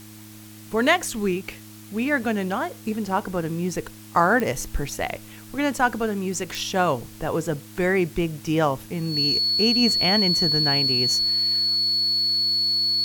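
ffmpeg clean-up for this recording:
-af "adeclick=t=4,bandreject=f=106.8:t=h:w=4,bandreject=f=213.6:t=h:w=4,bandreject=f=320.4:t=h:w=4,bandreject=f=4.4k:w=30,afwtdn=0.0045"

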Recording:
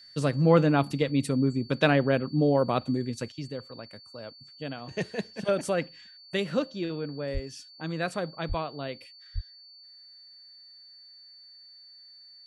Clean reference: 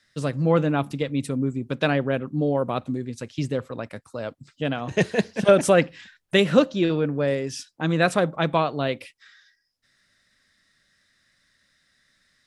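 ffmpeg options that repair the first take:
-filter_complex "[0:a]bandreject=f=4.5k:w=30,asplit=3[a][b][c];[a]afade=t=out:st=7.33:d=0.02[d];[b]highpass=f=140:w=0.5412,highpass=f=140:w=1.3066,afade=t=in:st=7.33:d=0.02,afade=t=out:st=7.45:d=0.02[e];[c]afade=t=in:st=7.45:d=0.02[f];[d][e][f]amix=inputs=3:normalize=0,asplit=3[g][h][i];[g]afade=t=out:st=8.48:d=0.02[j];[h]highpass=f=140:w=0.5412,highpass=f=140:w=1.3066,afade=t=in:st=8.48:d=0.02,afade=t=out:st=8.6:d=0.02[k];[i]afade=t=in:st=8.6:d=0.02[l];[j][k][l]amix=inputs=3:normalize=0,asplit=3[m][n][o];[m]afade=t=out:st=9.34:d=0.02[p];[n]highpass=f=140:w=0.5412,highpass=f=140:w=1.3066,afade=t=in:st=9.34:d=0.02,afade=t=out:st=9.46:d=0.02[q];[o]afade=t=in:st=9.46:d=0.02[r];[p][q][r]amix=inputs=3:normalize=0,asetnsamples=n=441:p=0,asendcmd='3.32 volume volume 10.5dB',volume=0dB"

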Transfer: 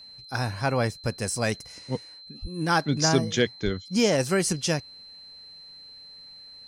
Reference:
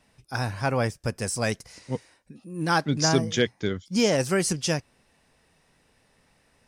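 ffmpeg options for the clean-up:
-filter_complex "[0:a]bandreject=f=4.1k:w=30,asplit=3[a][b][c];[a]afade=t=out:st=2.41:d=0.02[d];[b]highpass=f=140:w=0.5412,highpass=f=140:w=1.3066,afade=t=in:st=2.41:d=0.02,afade=t=out:st=2.53:d=0.02[e];[c]afade=t=in:st=2.53:d=0.02[f];[d][e][f]amix=inputs=3:normalize=0,asplit=3[g][h][i];[g]afade=t=out:st=3.64:d=0.02[j];[h]highpass=f=140:w=0.5412,highpass=f=140:w=1.3066,afade=t=in:st=3.64:d=0.02,afade=t=out:st=3.76:d=0.02[k];[i]afade=t=in:st=3.76:d=0.02[l];[j][k][l]amix=inputs=3:normalize=0"

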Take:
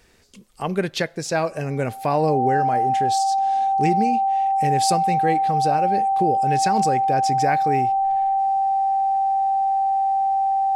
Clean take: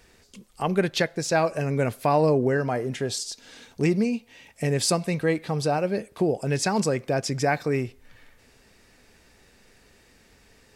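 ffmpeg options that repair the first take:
-af "bandreject=f=780:w=30"

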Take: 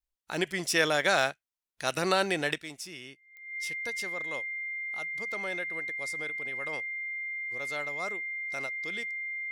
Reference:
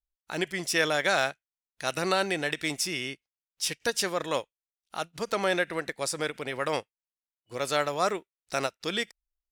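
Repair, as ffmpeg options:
-af "adeclick=t=4,bandreject=f=2.1k:w=30,asetnsamples=n=441:p=0,asendcmd='2.58 volume volume 11.5dB',volume=0dB"

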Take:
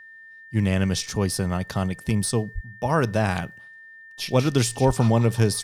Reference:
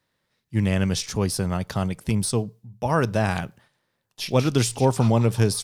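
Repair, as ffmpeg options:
-filter_complex "[0:a]bandreject=f=1.8k:w=30,asplit=3[a][b][c];[a]afade=t=out:st=2.54:d=0.02[d];[b]highpass=f=140:w=0.5412,highpass=f=140:w=1.3066,afade=t=in:st=2.54:d=0.02,afade=t=out:st=2.66:d=0.02[e];[c]afade=t=in:st=2.66:d=0.02[f];[d][e][f]amix=inputs=3:normalize=0,asplit=3[g][h][i];[g]afade=t=out:st=4.86:d=0.02[j];[h]highpass=f=140:w=0.5412,highpass=f=140:w=1.3066,afade=t=in:st=4.86:d=0.02,afade=t=out:st=4.98:d=0.02[k];[i]afade=t=in:st=4.98:d=0.02[l];[j][k][l]amix=inputs=3:normalize=0"

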